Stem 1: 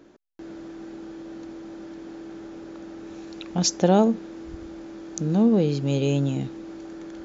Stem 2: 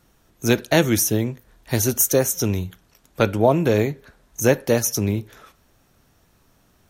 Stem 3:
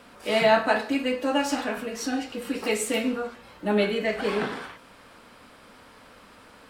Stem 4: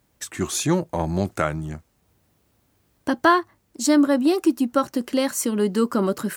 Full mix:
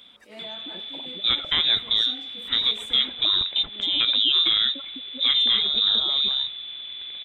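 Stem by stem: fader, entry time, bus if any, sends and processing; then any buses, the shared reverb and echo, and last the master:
+2.0 dB, 0.00 s, bus A, no send, brickwall limiter −18 dBFS, peak gain reduction 11.5 dB
+1.0 dB, 0.80 s, bus A, no send, no processing
−13.5 dB, 0.00 s, bus B, no send, level that may rise only so fast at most 160 dB per second; automatic ducking −13 dB, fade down 0.30 s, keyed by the first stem
−7.5 dB, 0.00 s, bus B, no send, auto-filter band-pass sine 10 Hz 280–2,500 Hz; gate on every frequency bin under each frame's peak −10 dB strong
bus A: 0.0 dB, voice inversion scrambler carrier 3,800 Hz; brickwall limiter −10.5 dBFS, peak gain reduction 9.5 dB
bus B: 0.0 dB, parametric band 220 Hz +3.5 dB; downward compressor 6 to 1, threshold −40 dBFS, peak gain reduction 17.5 dB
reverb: not used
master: no processing

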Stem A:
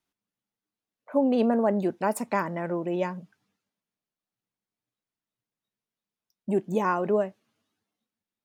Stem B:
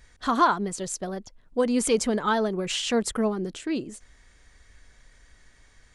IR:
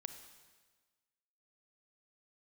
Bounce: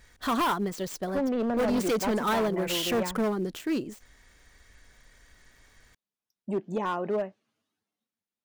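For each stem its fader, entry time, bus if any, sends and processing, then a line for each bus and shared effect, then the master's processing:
−3.5 dB, 0.00 s, no send, treble cut that deepens with the level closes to 3,000 Hz, closed at −19 dBFS
+0.5 dB, 0.00 s, no send, gap after every zero crossing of 0.056 ms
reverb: not used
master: low-shelf EQ 91 Hz −5 dB; hard clipping −22.5 dBFS, distortion −9 dB

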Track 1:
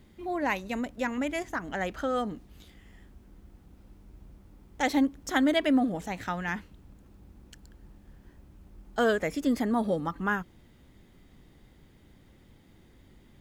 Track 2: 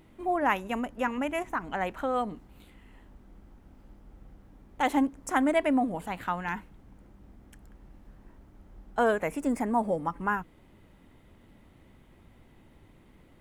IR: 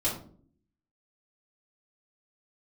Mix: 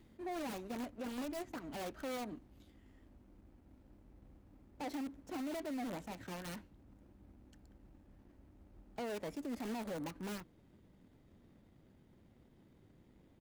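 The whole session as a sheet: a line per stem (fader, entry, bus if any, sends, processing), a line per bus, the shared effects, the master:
−7.0 dB, 0.00 s, no send, wrap-around overflow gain 27 dB; level that may rise only so fast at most 130 dB per second; automatic ducking −8 dB, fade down 0.40 s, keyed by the second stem
−6.0 dB, 3.7 ms, no send, running median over 41 samples; high-pass filter 86 Hz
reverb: not used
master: brickwall limiter −34 dBFS, peak gain reduction 11.5 dB

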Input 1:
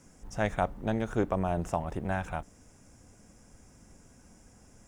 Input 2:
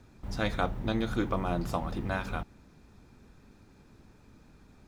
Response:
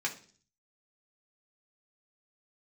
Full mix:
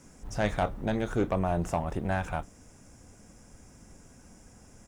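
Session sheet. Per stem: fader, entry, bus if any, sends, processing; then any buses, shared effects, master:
+3.0 dB, 0.00 s, no send, soft clipping −21 dBFS, distortion −16 dB
−6.5 dB, 24 ms, polarity flipped, no send, automatic ducking −9 dB, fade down 1.85 s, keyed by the first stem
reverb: not used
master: no processing

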